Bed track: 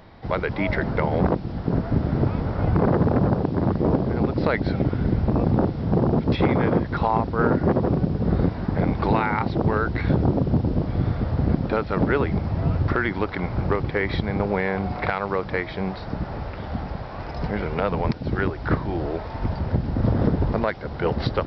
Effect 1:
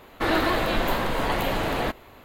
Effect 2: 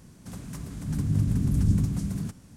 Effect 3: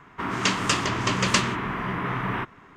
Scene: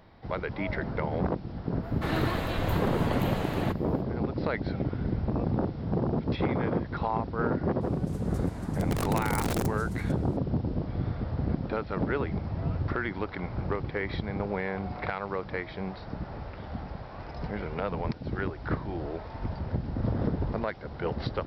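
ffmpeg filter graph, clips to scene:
-filter_complex "[0:a]volume=-8dB[a];[2:a]aeval=exprs='(mod(7.94*val(0)+1,2)-1)/7.94':c=same[b];[1:a]atrim=end=2.24,asetpts=PTS-STARTPTS,volume=-9dB,afade=t=in:d=0.05,afade=t=out:st=2.19:d=0.05,adelay=1810[c];[b]atrim=end=2.56,asetpts=PTS-STARTPTS,volume=-7dB,afade=t=in:d=0.004:c=hsin,afade=t=out:st=2.556:d=0.004:c=hsin,adelay=7810[d];[a][c][d]amix=inputs=3:normalize=0"

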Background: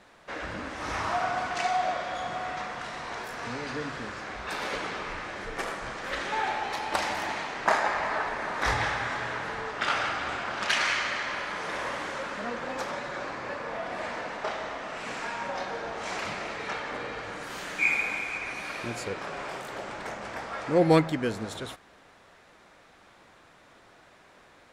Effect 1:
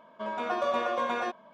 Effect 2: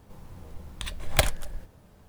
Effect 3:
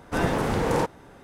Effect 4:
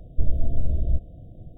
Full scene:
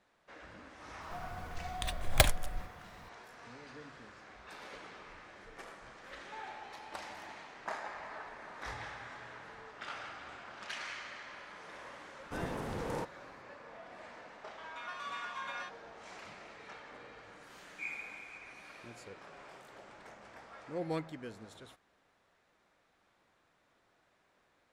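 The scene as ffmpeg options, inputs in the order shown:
-filter_complex "[0:a]volume=-16.5dB[a];[1:a]highpass=f=1.2k:w=0.5412,highpass=f=1.2k:w=1.3066[b];[2:a]atrim=end=2.08,asetpts=PTS-STARTPTS,volume=-2.5dB,afade=t=in:d=0.004:c=hsin,afade=t=out:st=2.076:d=0.004:c=hsin,adelay=1010[c];[3:a]atrim=end=1.23,asetpts=PTS-STARTPTS,volume=-14.5dB,afade=t=in:d=0.004:c=hsin,afade=t=out:st=1.226:d=0.004:c=hsin,adelay=12190[d];[b]atrim=end=1.53,asetpts=PTS-STARTPTS,volume=-6dB,afade=t=in:d=0.004:c=hsin,afade=t=out:st=1.526:d=0.004:c=hsin,adelay=14380[e];[a][c][d][e]amix=inputs=4:normalize=0"

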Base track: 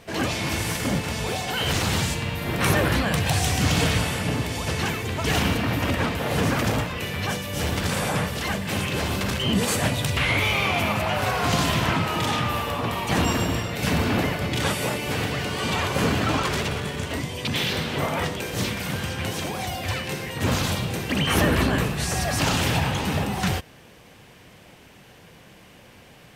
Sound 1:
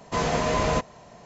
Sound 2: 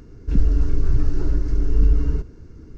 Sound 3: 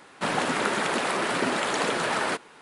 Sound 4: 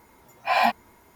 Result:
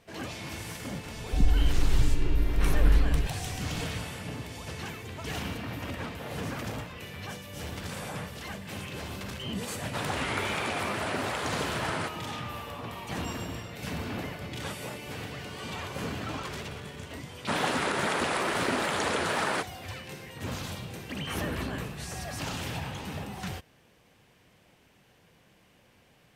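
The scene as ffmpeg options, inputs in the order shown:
-filter_complex "[3:a]asplit=2[a][b];[0:a]volume=-12.5dB[c];[b]alimiter=limit=-14.5dB:level=0:latency=1:release=40[d];[2:a]atrim=end=2.77,asetpts=PTS-STARTPTS,volume=-5.5dB,afade=t=in:d=0.004:c=hsin,afade=t=out:st=2.766:d=0.004:c=hsin,adelay=1050[e];[a]atrim=end=2.61,asetpts=PTS-STARTPTS,volume=-7dB,afade=t=in:d=0.004:c=hsin,afade=t=out:st=2.606:d=0.004:c=hsin,adelay=9720[f];[d]atrim=end=2.61,asetpts=PTS-STARTPTS,volume=-2.5dB,afade=t=in:d=0.004:c=hsin,afade=t=out:st=2.606:d=0.004:c=hsin,adelay=17260[g];[c][e][f][g]amix=inputs=4:normalize=0"

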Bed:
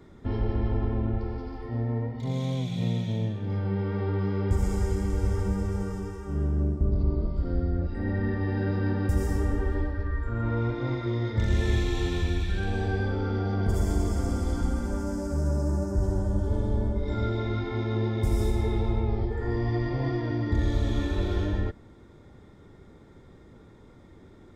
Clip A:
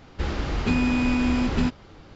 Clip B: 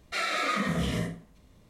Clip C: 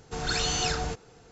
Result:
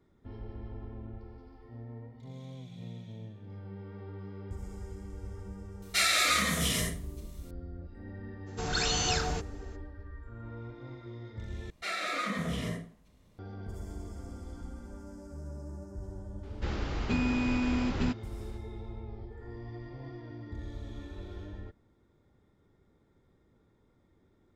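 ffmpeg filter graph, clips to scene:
-filter_complex "[2:a]asplit=2[a][b];[0:a]volume=-16dB[c];[a]crystalizer=i=7:c=0[d];[c]asplit=2[e][f];[e]atrim=end=11.704[g];[b]atrim=end=1.69,asetpts=PTS-STARTPTS,volume=-5dB[h];[f]atrim=start=13.386[i];[d]atrim=end=1.69,asetpts=PTS-STARTPTS,volume=-5dB,afade=t=in:d=0.004:c=hsin,afade=t=out:st=1.686:d=0.004:c=hsin,adelay=5820[j];[3:a]atrim=end=1.31,asetpts=PTS-STARTPTS,volume=-1.5dB,afade=t=in:d=0.02,afade=t=out:st=1.29:d=0.02,adelay=8460[k];[1:a]atrim=end=2.15,asetpts=PTS-STARTPTS,volume=-7dB,afade=t=in:d=0.004:c=hsin,afade=t=out:st=2.146:d=0.004:c=hsin,adelay=16430[l];[g][h]acrossfade=d=0.004:c1=hsin:c2=hsin[m];[m][i]acrossfade=d=0.004:c1=hsin:c2=hsin[n];[n][j][k][l]amix=inputs=4:normalize=0"

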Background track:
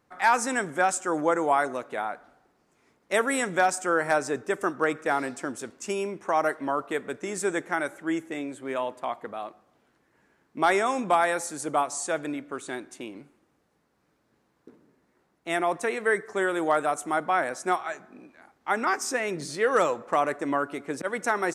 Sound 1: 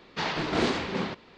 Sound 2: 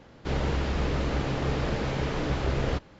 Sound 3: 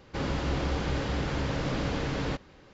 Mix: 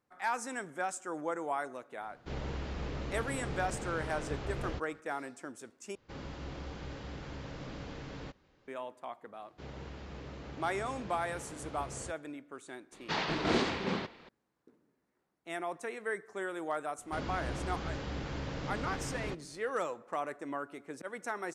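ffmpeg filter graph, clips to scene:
-filter_complex "[2:a]asplit=2[a][b];[3:a]asplit=2[c][d];[0:a]volume=-12dB[e];[b]highpass=60[f];[1:a]asplit=2[g][h];[h]adelay=400,highpass=300,lowpass=3.4k,asoftclip=type=hard:threshold=-23dB,volume=-21dB[i];[g][i]amix=inputs=2:normalize=0[j];[e]asplit=2[k][l];[k]atrim=end=5.954[m];[c]atrim=end=2.73,asetpts=PTS-STARTPTS,volume=-13.5dB[n];[l]atrim=start=8.676[o];[a]atrim=end=2.99,asetpts=PTS-STARTPTS,volume=-11dB,afade=t=in:d=0.004:c=hsin,afade=t=out:st=2.986:d=0.004:c=hsin,adelay=2010[p];[f]atrim=end=2.99,asetpts=PTS-STARTPTS,volume=-17dB,afade=t=in:d=0.004:c=hsin,afade=t=out:st=2.986:d=0.004:c=hsin,adelay=9330[q];[j]atrim=end=1.37,asetpts=PTS-STARTPTS,volume=-3.5dB,afade=t=in:d=0.004:c=hsin,afade=t=out:st=1.366:d=0.004:c=hsin,adelay=12920[r];[d]atrim=end=2.73,asetpts=PTS-STARTPTS,volume=-8.5dB,afade=t=in:d=0.004:c=hsin,afade=t=out:st=2.726:d=0.004:c=hsin,adelay=16980[s];[m][n]acrossfade=d=0.004:c1=hsin:c2=hsin[t];[t][o]acrossfade=d=0.004:c1=hsin:c2=hsin[u];[u][p][q][r][s]amix=inputs=5:normalize=0"

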